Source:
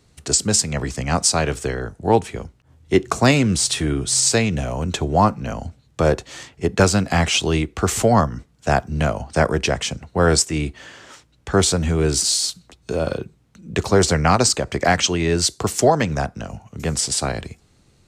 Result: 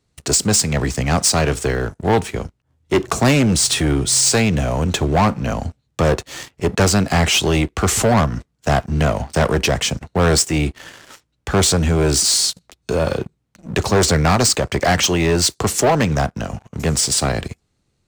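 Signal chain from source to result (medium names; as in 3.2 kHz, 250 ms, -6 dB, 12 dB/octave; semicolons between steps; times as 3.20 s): waveshaping leveller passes 3; trim -5.5 dB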